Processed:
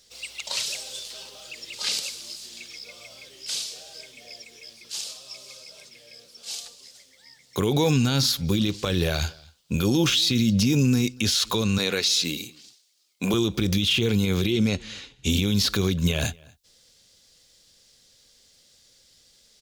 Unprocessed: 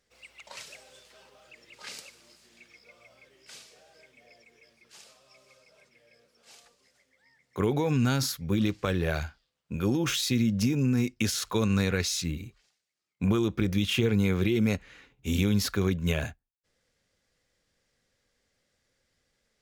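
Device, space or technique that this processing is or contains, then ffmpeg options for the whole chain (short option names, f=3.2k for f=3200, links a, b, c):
over-bright horn tweeter: -filter_complex "[0:a]asettb=1/sr,asplit=3[a][b][c];[a]atrim=end=11.784[d];[b]atrim=start=11.78:end=13.34,asetpts=PTS-STARTPTS,afade=t=in:d=0.004:c=qsin,afade=t=out:st=1.556:d=0.004:c=qsin,highpass=300[e];[c]atrim=start=13.336[f];[d][e]acrossfade=d=0.004:c1=hsin:c2=qsin[g];[g][f]acrossfade=d=0.004:c1=qsin:c2=hsin,acrossover=split=3400[h][i];[i]acompressor=threshold=-46dB:ratio=4:attack=1:release=60[j];[h][j]amix=inputs=2:normalize=0,highshelf=f=2.7k:t=q:w=1.5:g=11,alimiter=limit=-21dB:level=0:latency=1:release=75,asettb=1/sr,asplit=3[k][l][m];[k]atrim=end=14.524[n];[l]atrim=start=14.52:end=15.3,asetpts=PTS-STARTPTS,afade=t=in:d=0.004:c=qsin,afade=t=out:st=0.776:d=0.004:c=qsin,lowpass=8.3k[o];[m]atrim=start=15.296[p];[n][o]acrossfade=d=0.004:c1=hsin:c2=qsin[q];[q][p]acrossfade=d=0.004:c1=qsin:c2=hsin,asplit=2[r][s];[s]adelay=239.1,volume=-25dB,highshelf=f=4k:g=-5.38[t];[r][t]amix=inputs=2:normalize=0,volume=8.5dB"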